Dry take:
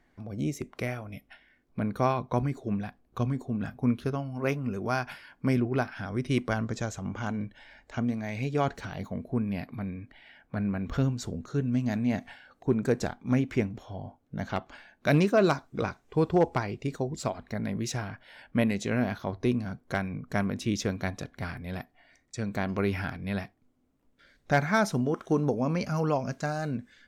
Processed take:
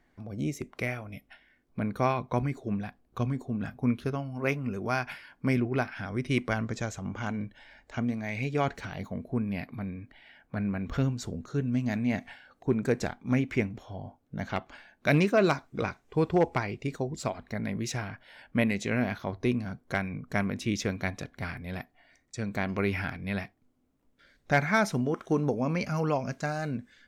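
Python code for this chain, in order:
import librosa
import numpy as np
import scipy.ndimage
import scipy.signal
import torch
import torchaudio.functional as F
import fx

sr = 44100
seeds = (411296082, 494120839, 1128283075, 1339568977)

y = fx.dynamic_eq(x, sr, hz=2200.0, q=2.2, threshold_db=-50.0, ratio=4.0, max_db=6)
y = y * librosa.db_to_amplitude(-1.0)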